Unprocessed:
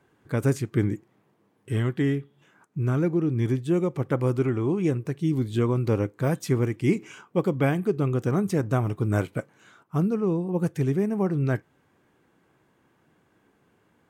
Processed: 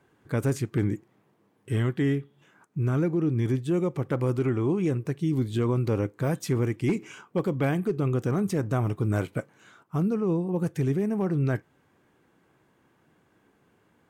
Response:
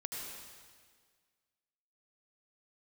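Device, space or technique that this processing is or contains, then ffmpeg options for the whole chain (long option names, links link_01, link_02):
clipper into limiter: -af "asoftclip=type=hard:threshold=-15dB,alimiter=limit=-18dB:level=0:latency=1:release=20"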